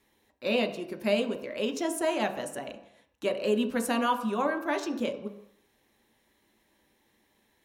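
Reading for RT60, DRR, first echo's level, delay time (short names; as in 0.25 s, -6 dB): 0.75 s, 4.0 dB, none, none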